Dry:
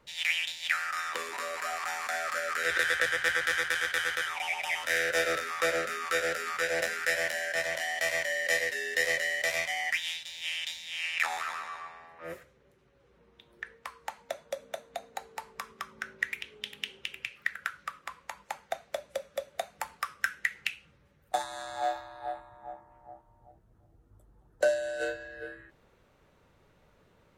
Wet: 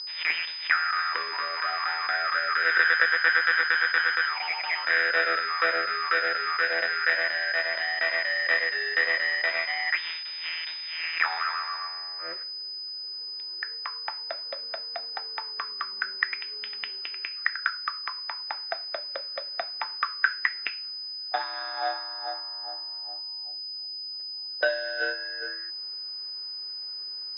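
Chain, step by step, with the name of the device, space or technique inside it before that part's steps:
toy sound module (linearly interpolated sample-rate reduction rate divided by 4×; switching amplifier with a slow clock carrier 5,000 Hz; loudspeaker in its box 520–3,900 Hz, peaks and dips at 550 Hz −9 dB, 790 Hz −5 dB, 1,500 Hz +4 dB, 3,700 Hz +7 dB)
level +7 dB

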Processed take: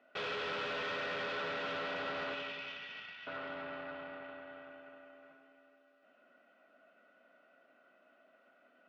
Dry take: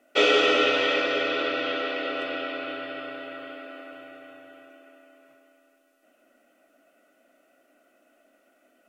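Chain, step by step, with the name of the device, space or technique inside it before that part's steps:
0:02.34–0:03.27: inverse Chebyshev high-pass filter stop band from 460 Hz, stop band 70 dB
analogue delay pedal into a guitar amplifier (bucket-brigade delay 88 ms, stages 1,024, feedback 66%, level −9.5 dB; tube saturation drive 37 dB, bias 0.7; loudspeaker in its box 100–4,200 Hz, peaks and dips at 170 Hz +7 dB, 310 Hz −8 dB, 1,000 Hz +6 dB, 1,500 Hz +5 dB)
level −1 dB

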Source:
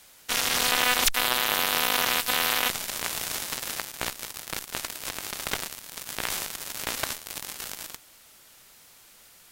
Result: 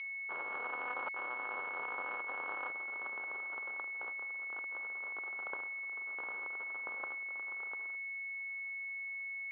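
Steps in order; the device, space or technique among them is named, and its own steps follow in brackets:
toy sound module (linearly interpolated sample-rate reduction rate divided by 4×; switching amplifier with a slow clock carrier 2,200 Hz; loudspeaker in its box 670–4,200 Hz, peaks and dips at 680 Hz −7 dB, 1,300 Hz +4 dB, 1,900 Hz −5 dB, 3,000 Hz +6 dB)
level −8.5 dB

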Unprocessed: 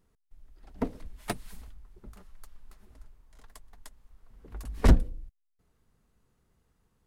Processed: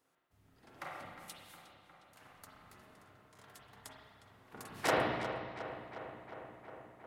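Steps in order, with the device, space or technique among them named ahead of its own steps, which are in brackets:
gate on every frequency bin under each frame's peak −20 dB weak
0:01.14–0:02.16: guitar amp tone stack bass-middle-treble 5-5-5
dub delay into a spring reverb (feedback echo with a low-pass in the loop 359 ms, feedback 76%, low-pass 3,900 Hz, level −11 dB; spring reverb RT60 1.5 s, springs 30/41/49 ms, chirp 40 ms, DRR −4 dB)

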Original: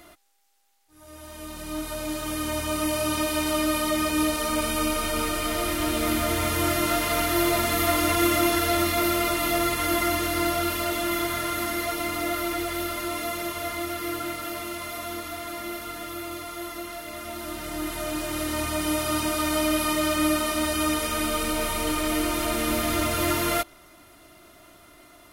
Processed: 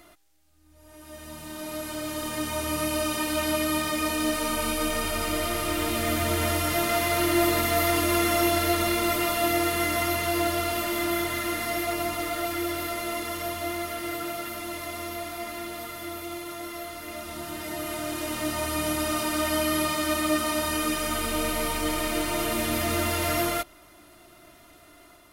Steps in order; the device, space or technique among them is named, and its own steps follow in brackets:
reverse reverb (reversed playback; convolution reverb RT60 1.0 s, pre-delay 109 ms, DRR 1 dB; reversed playback)
level −3.5 dB

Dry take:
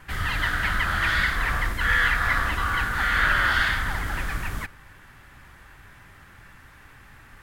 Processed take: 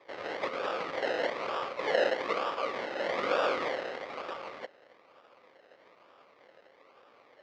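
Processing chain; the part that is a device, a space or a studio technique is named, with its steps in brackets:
0:01.31–0:02.07: high-shelf EQ 6,400 Hz +11.5 dB
circuit-bent sampling toy (sample-and-hold swept by an LFO 30×, swing 60% 1.1 Hz; loudspeaker in its box 490–4,700 Hz, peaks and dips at 530 Hz +9 dB, 1,200 Hz +8 dB, 2,100 Hz +7 dB)
level −7.5 dB

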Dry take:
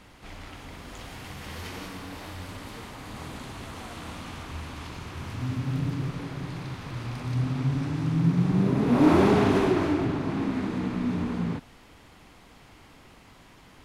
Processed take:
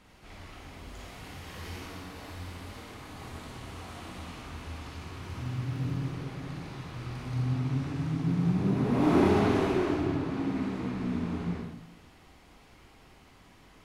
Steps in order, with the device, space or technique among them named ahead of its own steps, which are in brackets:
bathroom (convolution reverb RT60 0.75 s, pre-delay 40 ms, DRR −1 dB)
level −7.5 dB

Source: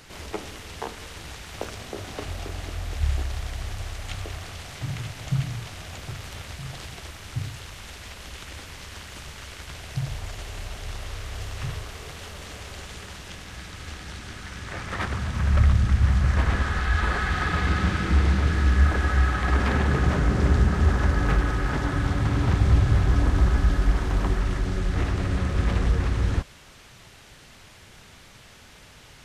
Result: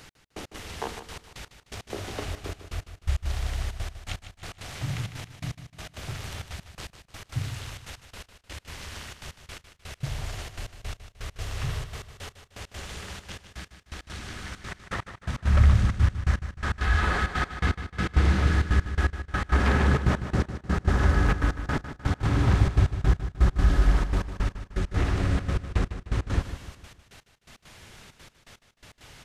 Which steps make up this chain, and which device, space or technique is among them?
trance gate with a delay (gate pattern "x...x.xxxxx.x.." 166 BPM −60 dB; repeating echo 152 ms, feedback 44%, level −11 dB)

